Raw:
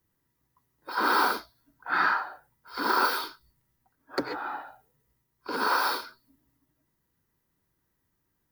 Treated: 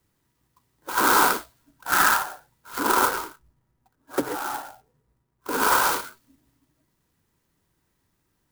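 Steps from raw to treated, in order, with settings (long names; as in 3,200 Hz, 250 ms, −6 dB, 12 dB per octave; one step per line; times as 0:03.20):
0:02.79–0:05.52: running median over 15 samples
converter with an unsteady clock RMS 0.059 ms
level +5.5 dB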